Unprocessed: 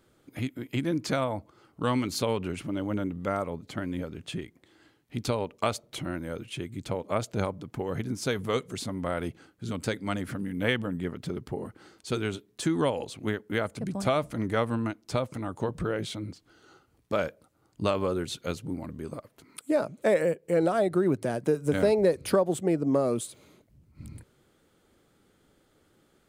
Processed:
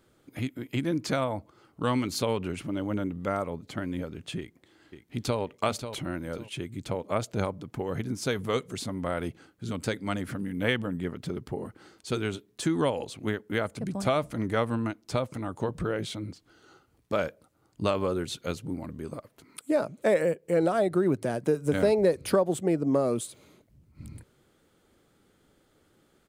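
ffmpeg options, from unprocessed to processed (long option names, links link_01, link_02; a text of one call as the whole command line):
ffmpeg -i in.wav -filter_complex "[0:a]asplit=2[link_01][link_02];[link_02]afade=type=in:start_time=4.38:duration=0.01,afade=type=out:start_time=5.4:duration=0.01,aecho=0:1:540|1080|1620:0.354813|0.0887033|0.0221758[link_03];[link_01][link_03]amix=inputs=2:normalize=0" out.wav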